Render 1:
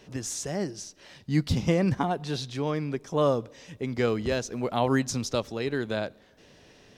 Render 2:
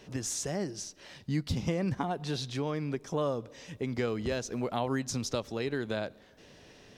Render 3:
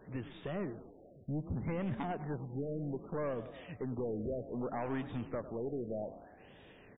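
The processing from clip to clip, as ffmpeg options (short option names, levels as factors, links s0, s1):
-af "acompressor=threshold=0.0316:ratio=2.5"
-filter_complex "[0:a]aeval=exprs='(tanh(28.2*val(0)+0.15)-tanh(0.15))/28.2':c=same,asplit=7[s0][s1][s2][s3][s4][s5][s6];[s1]adelay=101,afreqshift=30,volume=0.2[s7];[s2]adelay=202,afreqshift=60,volume=0.12[s8];[s3]adelay=303,afreqshift=90,volume=0.0716[s9];[s4]adelay=404,afreqshift=120,volume=0.0432[s10];[s5]adelay=505,afreqshift=150,volume=0.026[s11];[s6]adelay=606,afreqshift=180,volume=0.0155[s12];[s0][s7][s8][s9][s10][s11][s12]amix=inputs=7:normalize=0,afftfilt=real='re*lt(b*sr/1024,720*pow(3800/720,0.5+0.5*sin(2*PI*0.64*pts/sr)))':imag='im*lt(b*sr/1024,720*pow(3800/720,0.5+0.5*sin(2*PI*0.64*pts/sr)))':win_size=1024:overlap=0.75,volume=0.794"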